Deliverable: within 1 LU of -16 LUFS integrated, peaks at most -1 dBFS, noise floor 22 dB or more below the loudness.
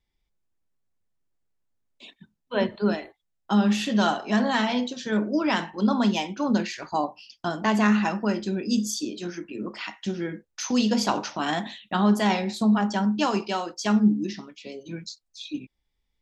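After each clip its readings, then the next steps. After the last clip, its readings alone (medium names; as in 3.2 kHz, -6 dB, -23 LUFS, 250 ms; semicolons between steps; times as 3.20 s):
loudness -25.0 LUFS; peak level -8.5 dBFS; loudness target -16.0 LUFS
-> trim +9 dB; peak limiter -1 dBFS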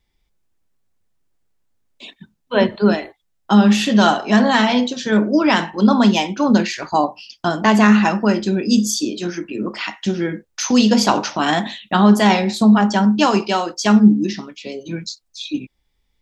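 loudness -16.5 LUFS; peak level -1.0 dBFS; noise floor -68 dBFS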